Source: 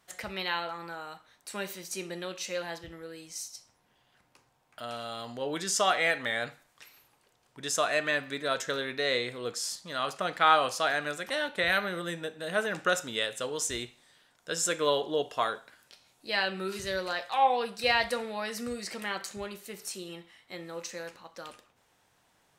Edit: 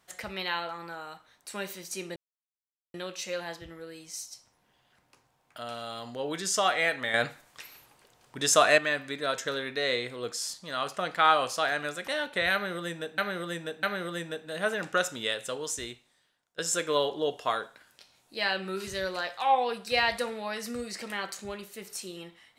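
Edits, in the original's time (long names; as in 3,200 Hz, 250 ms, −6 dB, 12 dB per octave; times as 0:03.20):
0:02.16: splice in silence 0.78 s
0:06.36–0:08.00: clip gain +7 dB
0:11.75–0:12.40: repeat, 3 plays
0:13.36–0:14.50: fade out, to −21 dB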